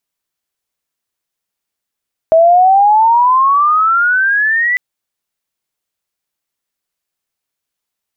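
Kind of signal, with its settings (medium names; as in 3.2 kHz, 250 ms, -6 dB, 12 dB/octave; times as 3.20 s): sweep logarithmic 640 Hz -> 2 kHz -4 dBFS -> -10.5 dBFS 2.45 s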